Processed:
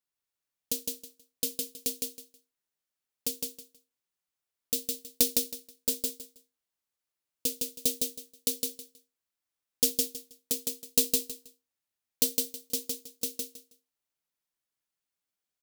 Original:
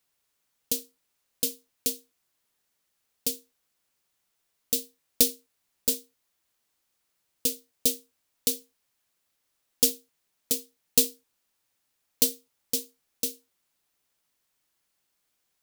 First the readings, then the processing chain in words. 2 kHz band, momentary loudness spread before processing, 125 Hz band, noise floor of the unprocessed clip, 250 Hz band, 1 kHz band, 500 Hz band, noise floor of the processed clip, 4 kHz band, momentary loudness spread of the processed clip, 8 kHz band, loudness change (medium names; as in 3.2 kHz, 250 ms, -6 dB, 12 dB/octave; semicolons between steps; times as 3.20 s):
-1.5 dB, 9 LU, -2.0 dB, -77 dBFS, -2.0 dB, no reading, -1.5 dB, under -85 dBFS, -1.5 dB, 13 LU, -1.5 dB, -3.0 dB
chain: gate -53 dBFS, range -11 dB; feedback delay 160 ms, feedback 21%, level -3 dB; trim -3.5 dB